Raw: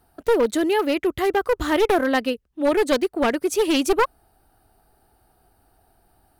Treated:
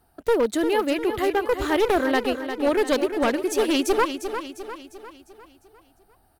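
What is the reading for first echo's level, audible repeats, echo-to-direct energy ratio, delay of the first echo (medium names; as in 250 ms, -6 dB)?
-9.0 dB, 5, -8.0 dB, 351 ms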